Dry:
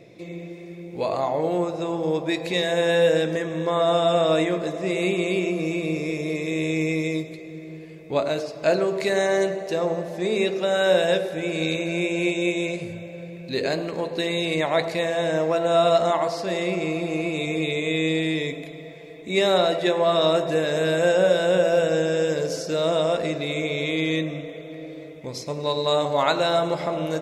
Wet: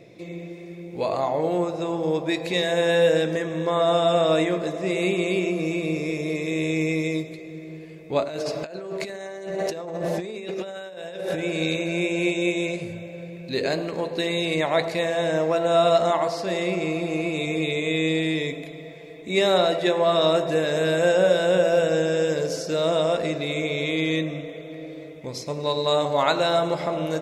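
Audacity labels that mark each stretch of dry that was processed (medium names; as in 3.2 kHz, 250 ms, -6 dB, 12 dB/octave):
8.240000	11.390000	compressor with a negative ratio -32 dBFS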